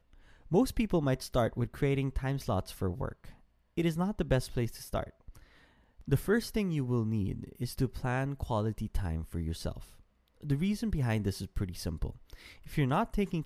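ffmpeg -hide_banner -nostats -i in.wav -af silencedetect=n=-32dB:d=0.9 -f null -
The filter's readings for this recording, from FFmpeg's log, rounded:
silence_start: 5.03
silence_end: 6.08 | silence_duration: 1.05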